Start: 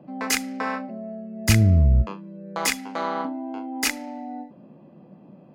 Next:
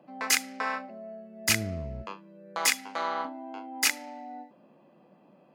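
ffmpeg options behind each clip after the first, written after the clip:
-af "highpass=f=970:p=1"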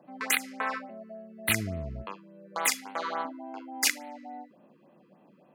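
-af "afftfilt=real='re*(1-between(b*sr/1024,650*pow(6500/650,0.5+0.5*sin(2*PI*3.5*pts/sr))/1.41,650*pow(6500/650,0.5+0.5*sin(2*PI*3.5*pts/sr))*1.41))':imag='im*(1-between(b*sr/1024,650*pow(6500/650,0.5+0.5*sin(2*PI*3.5*pts/sr))/1.41,650*pow(6500/650,0.5+0.5*sin(2*PI*3.5*pts/sr))*1.41))':win_size=1024:overlap=0.75"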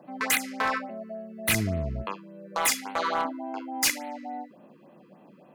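-af "asoftclip=type=hard:threshold=-25dB,volume=6dB"

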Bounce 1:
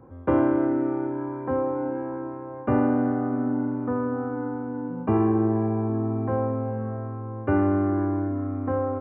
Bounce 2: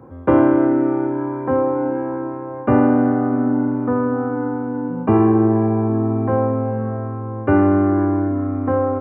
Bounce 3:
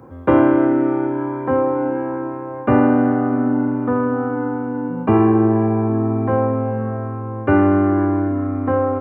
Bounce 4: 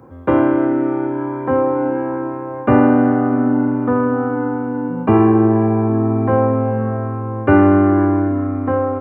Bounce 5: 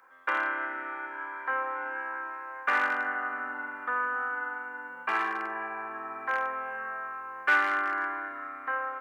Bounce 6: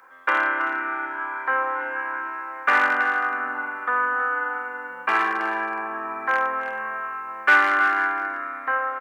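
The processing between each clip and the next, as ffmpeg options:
-af "highpass=80,volume=7.5dB"
-af "highshelf=f=2.5k:g=9.5"
-af "dynaudnorm=f=310:g=7:m=11.5dB,volume=-1dB"
-af "asoftclip=type=hard:threshold=-6dB,highpass=f=1.6k:t=q:w=2.3,volume=-4.5dB"
-af "aecho=1:1:322:0.316,volume=7.5dB"

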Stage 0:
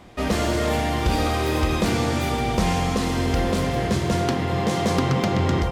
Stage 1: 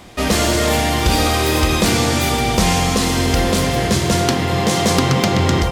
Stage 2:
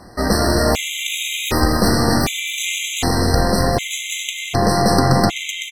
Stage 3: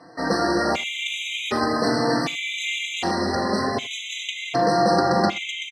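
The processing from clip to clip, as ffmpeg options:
-af "highshelf=f=3.1k:g=9.5,volume=5dB"
-af "aeval=exprs='0.891*(cos(1*acos(clip(val(0)/0.891,-1,1)))-cos(1*PI/2))+0.112*(cos(4*acos(clip(val(0)/0.891,-1,1)))-cos(4*PI/2))':c=same,aecho=1:1:262|524|786|1048|1310|1572:0.422|0.215|0.11|0.0559|0.0285|0.0145,afftfilt=real='re*gt(sin(2*PI*0.66*pts/sr)*(1-2*mod(floor(b*sr/1024/2000),2)),0)':imag='im*gt(sin(2*PI*0.66*pts/sr)*(1-2*mod(floor(b*sr/1024/2000),2)),0)':win_size=1024:overlap=0.75"
-filter_complex "[0:a]highpass=220,lowpass=4.4k,aecho=1:1:80:0.1,asplit=2[a][b];[b]adelay=4,afreqshift=0.45[c];[a][c]amix=inputs=2:normalize=1"

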